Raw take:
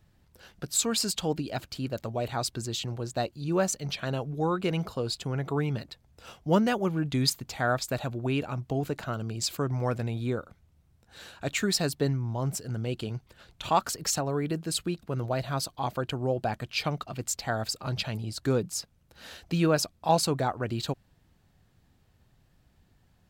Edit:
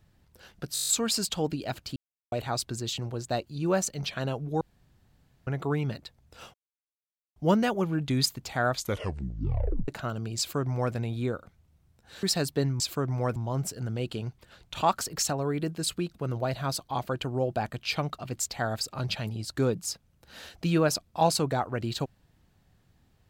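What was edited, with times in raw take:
0.74 stutter 0.02 s, 8 plays
1.82–2.18 mute
4.47–5.33 room tone
6.4 insert silence 0.82 s
7.76 tape stop 1.16 s
9.42–9.98 copy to 12.24
11.27–11.67 cut

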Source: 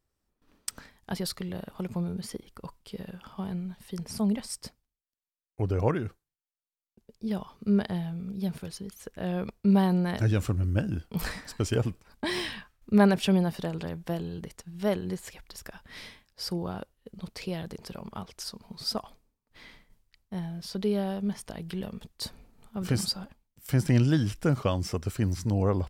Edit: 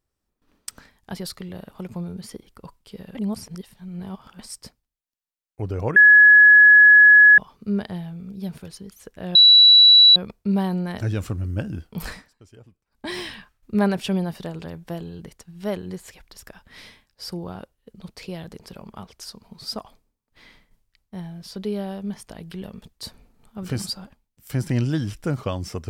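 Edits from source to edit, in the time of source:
3.15–4.39 reverse
5.96–7.38 bleep 1690 Hz -7 dBFS
9.35 add tone 3930 Hz -7.5 dBFS 0.81 s
11.31–12.28 dip -22 dB, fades 0.18 s

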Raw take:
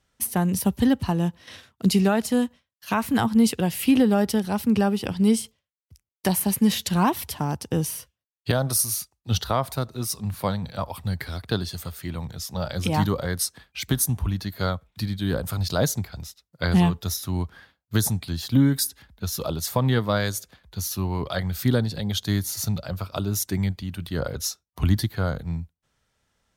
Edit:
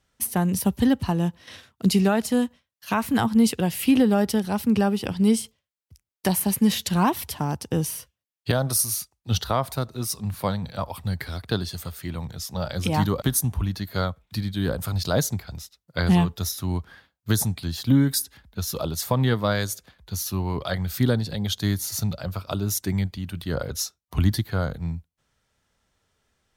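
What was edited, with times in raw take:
13.22–13.87 cut

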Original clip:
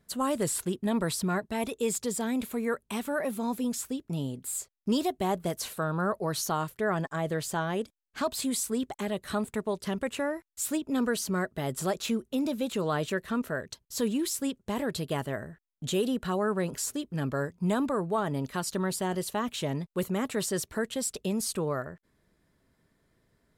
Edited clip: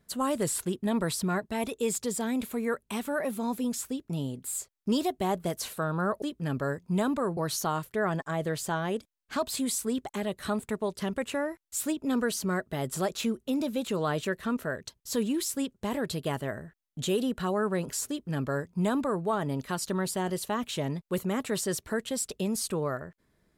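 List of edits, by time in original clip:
16.94–18.09 copy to 6.22

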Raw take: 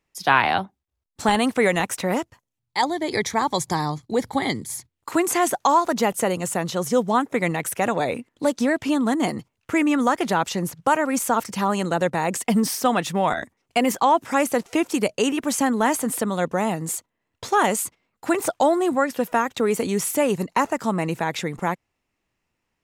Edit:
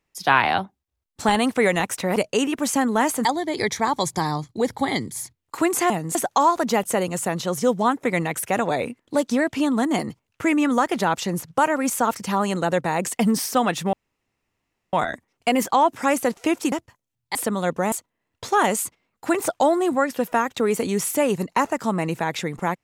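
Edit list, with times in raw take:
2.16–2.79 swap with 15.01–16.1
13.22 insert room tone 1.00 s
16.67–16.92 move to 5.44

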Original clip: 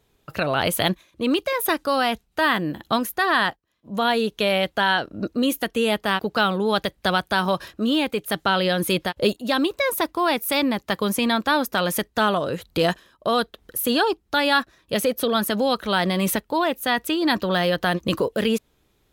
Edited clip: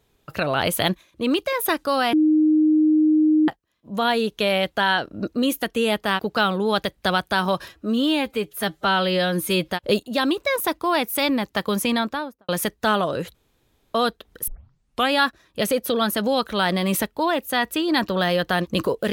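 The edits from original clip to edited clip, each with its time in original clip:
2.13–3.48 bleep 309 Hz -13.5 dBFS
7.69–9.02 stretch 1.5×
11.22–11.82 studio fade out
12.68–13.28 room tone
13.81 tape start 0.64 s

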